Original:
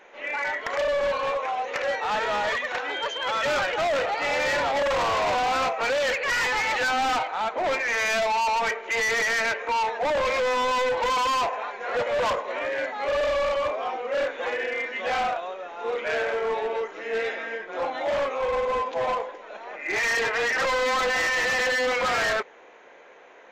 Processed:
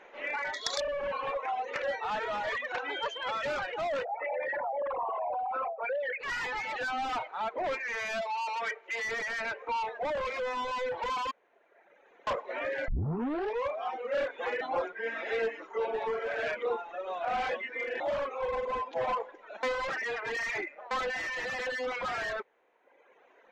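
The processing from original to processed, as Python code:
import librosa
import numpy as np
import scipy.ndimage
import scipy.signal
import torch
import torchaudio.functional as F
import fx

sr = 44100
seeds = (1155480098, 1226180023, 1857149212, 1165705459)

y = fx.spec_box(x, sr, start_s=0.54, length_s=0.26, low_hz=3300.0, high_hz=12000.0, gain_db=25)
y = fx.envelope_sharpen(y, sr, power=3.0, at=(4.03, 6.19), fade=0.02)
y = fx.highpass(y, sr, hz=600.0, slope=6, at=(8.21, 9.05))
y = fx.edit(y, sr, fx.room_tone_fill(start_s=11.31, length_s=0.96),
    fx.tape_start(start_s=12.88, length_s=0.82),
    fx.reverse_span(start_s=14.61, length_s=3.39),
    fx.reverse_span(start_s=19.63, length_s=1.28), tone=tone)
y = fx.dereverb_blind(y, sr, rt60_s=1.2)
y = fx.lowpass(y, sr, hz=3300.0, slope=6)
y = fx.rider(y, sr, range_db=10, speed_s=0.5)
y = F.gain(torch.from_numpy(y), -5.5).numpy()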